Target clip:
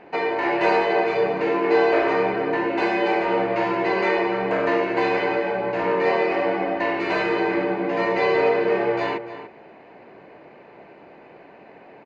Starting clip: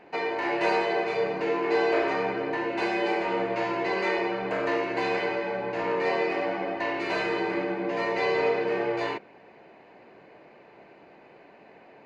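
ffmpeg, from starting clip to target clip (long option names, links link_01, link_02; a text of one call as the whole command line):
ffmpeg -i in.wav -filter_complex "[0:a]lowpass=frequency=3000:poles=1,asplit=2[link_01][link_02];[link_02]adelay=291.5,volume=-12dB,highshelf=frequency=4000:gain=-6.56[link_03];[link_01][link_03]amix=inputs=2:normalize=0,volume=6dB" out.wav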